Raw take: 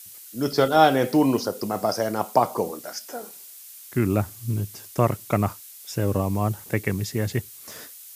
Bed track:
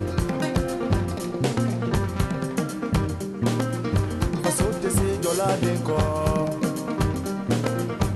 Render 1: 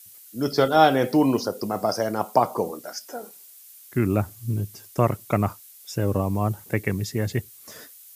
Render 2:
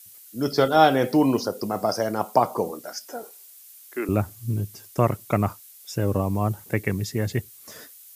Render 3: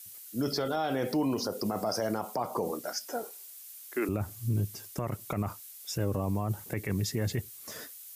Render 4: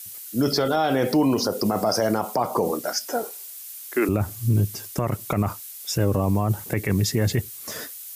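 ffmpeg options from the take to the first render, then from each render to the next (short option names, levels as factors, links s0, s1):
-af "afftdn=nr=6:nf=-44"
-filter_complex "[0:a]asettb=1/sr,asplit=3[s0][s1][s2];[s0]atrim=end=3.234[s3];[s1]atrim=start=3.23:end=4.09,asetpts=PTS-STARTPTS,afade=t=in:d=0.004:c=qsin,afade=t=out:st=0.856:d=0.004:c=qsin,highpass=f=350:w=0.5412,highpass=f=350:w=1.3066[s4];[s2]atrim=start=4.086[s5];[s3][s4]acrossfade=d=0.004:c1=hsin:c2=qsin[s6];[s6][s5]acrossfade=d=0.004:c1=qsin:c2=hsin"
-af "acompressor=threshold=0.0891:ratio=6,alimiter=limit=0.0841:level=0:latency=1:release=26"
-af "volume=2.82"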